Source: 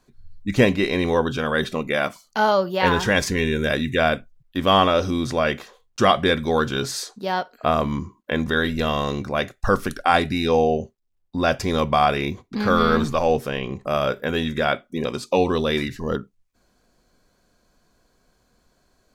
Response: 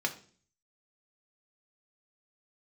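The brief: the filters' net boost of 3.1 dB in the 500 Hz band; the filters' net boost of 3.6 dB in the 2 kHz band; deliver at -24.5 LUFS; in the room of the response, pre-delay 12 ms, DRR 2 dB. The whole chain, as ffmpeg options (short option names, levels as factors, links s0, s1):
-filter_complex "[0:a]equalizer=f=500:t=o:g=3.5,equalizer=f=2000:t=o:g=4.5,asplit=2[s0][s1];[1:a]atrim=start_sample=2205,adelay=12[s2];[s1][s2]afir=irnorm=-1:irlink=0,volume=0.398[s3];[s0][s3]amix=inputs=2:normalize=0,volume=0.447"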